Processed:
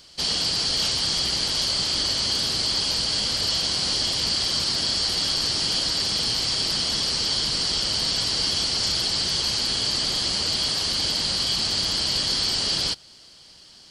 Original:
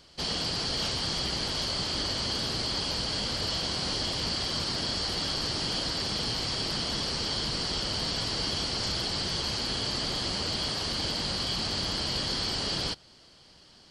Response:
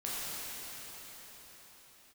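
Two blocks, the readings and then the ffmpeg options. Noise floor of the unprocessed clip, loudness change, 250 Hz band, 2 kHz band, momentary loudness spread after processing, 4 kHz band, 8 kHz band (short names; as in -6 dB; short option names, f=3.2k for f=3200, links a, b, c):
-56 dBFS, +7.5 dB, 0.0 dB, +4.0 dB, 1 LU, +8.0 dB, +10.0 dB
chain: -af "highshelf=f=2.9k:g=11.5"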